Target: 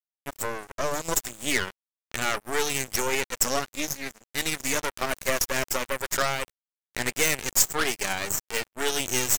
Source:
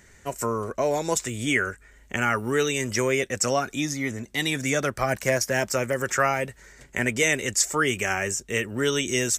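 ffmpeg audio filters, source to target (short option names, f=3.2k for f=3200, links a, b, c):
-af "aeval=exprs='0.422*(cos(1*acos(clip(val(0)/0.422,-1,1)))-cos(1*PI/2))+0.0376*(cos(6*acos(clip(val(0)/0.422,-1,1)))-cos(6*PI/2))+0.0944*(cos(8*acos(clip(val(0)/0.422,-1,1)))-cos(8*PI/2))':c=same,highshelf=f=6.1k:g=8.5,aeval=exprs='sgn(val(0))*max(abs(val(0))-0.0355,0)':c=same,volume=-3dB"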